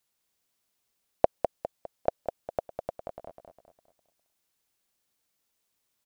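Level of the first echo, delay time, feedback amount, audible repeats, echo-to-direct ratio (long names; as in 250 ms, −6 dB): −6.5 dB, 203 ms, 42%, 4, −5.5 dB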